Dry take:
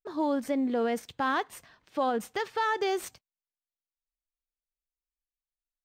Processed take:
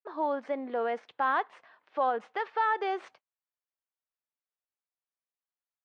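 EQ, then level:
high-pass filter 710 Hz 12 dB per octave
head-to-tape spacing loss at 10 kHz 45 dB
+7.5 dB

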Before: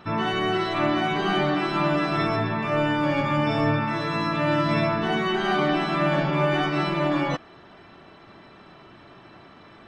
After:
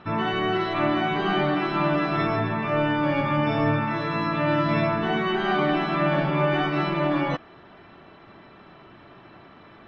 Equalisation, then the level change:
low-pass filter 3,600 Hz 12 dB per octave
0.0 dB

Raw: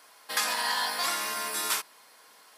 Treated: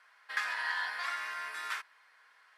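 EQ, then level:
resonant band-pass 1,700 Hz, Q 2.3
0.0 dB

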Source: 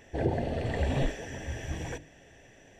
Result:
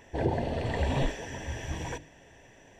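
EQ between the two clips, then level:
dynamic equaliser 4,100 Hz, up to +3 dB, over −53 dBFS, Q 0.86
parametric band 970 Hz +10 dB 0.27 octaves
0.0 dB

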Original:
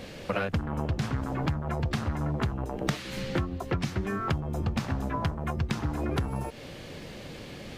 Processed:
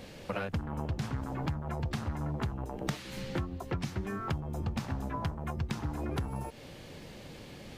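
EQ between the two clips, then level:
low-shelf EQ 340 Hz +2.5 dB
parametric band 880 Hz +3.5 dB 0.36 octaves
high-shelf EQ 6,300 Hz +5 dB
−7.0 dB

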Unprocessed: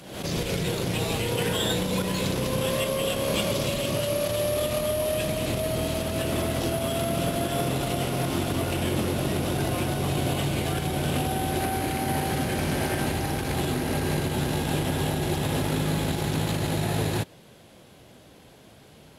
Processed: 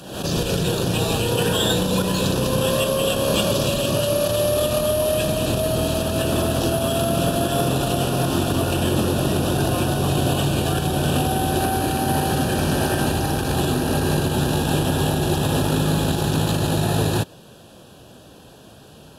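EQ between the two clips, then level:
Butterworth band-reject 2,100 Hz, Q 3.2
+6.0 dB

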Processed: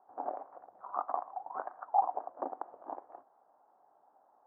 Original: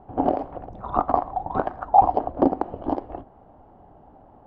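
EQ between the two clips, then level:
high-pass filter 890 Hz 12 dB per octave
low-pass filter 1,500 Hz 24 dB per octave
high-frequency loss of the air 83 metres
−8.5 dB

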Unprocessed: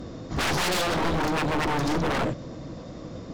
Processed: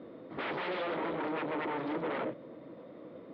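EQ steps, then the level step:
high-frequency loss of the air 320 metres
loudspeaker in its box 370–3,300 Hz, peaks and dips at 750 Hz −7 dB, 1,100 Hz −5 dB, 1,600 Hz −6 dB, 2,700 Hz −5 dB
−3.0 dB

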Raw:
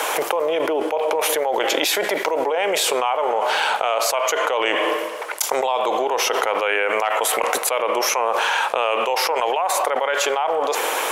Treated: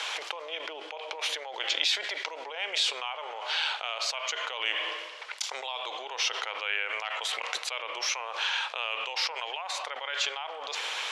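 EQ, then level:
resonant band-pass 4,000 Hz, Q 1.5
high-frequency loss of the air 75 metres
0.0 dB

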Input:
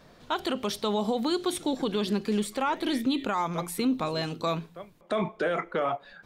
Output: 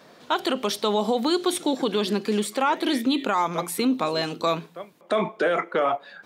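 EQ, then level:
high-pass filter 230 Hz 12 dB per octave
+5.5 dB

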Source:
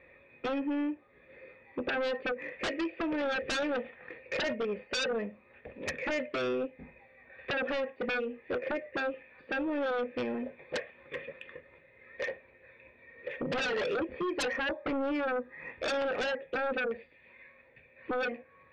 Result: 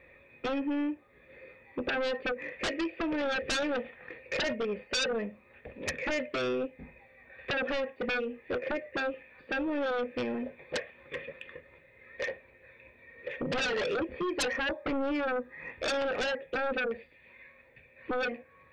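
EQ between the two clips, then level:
low-shelf EQ 110 Hz +6 dB
high-shelf EQ 4,100 Hz +6.5 dB
0.0 dB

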